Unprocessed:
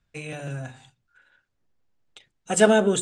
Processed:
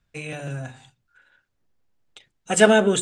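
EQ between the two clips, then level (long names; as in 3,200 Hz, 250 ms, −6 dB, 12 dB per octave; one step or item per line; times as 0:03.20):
dynamic equaliser 2,200 Hz, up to +5 dB, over −39 dBFS, Q 1.1
+1.5 dB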